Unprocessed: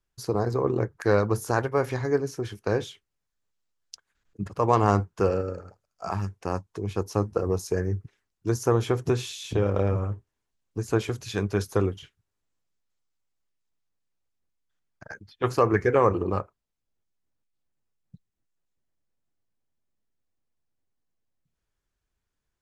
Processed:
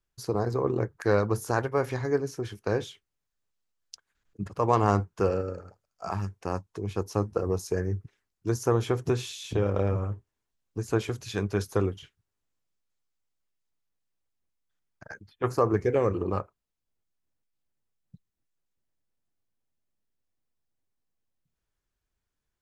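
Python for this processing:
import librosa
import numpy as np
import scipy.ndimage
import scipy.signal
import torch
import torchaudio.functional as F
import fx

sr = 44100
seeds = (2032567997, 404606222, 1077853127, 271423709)

y = fx.peak_eq(x, sr, hz=fx.line((15.28, 5700.0), (16.16, 750.0)), db=-11.5, octaves=0.86, at=(15.28, 16.16), fade=0.02)
y = y * librosa.db_to_amplitude(-2.0)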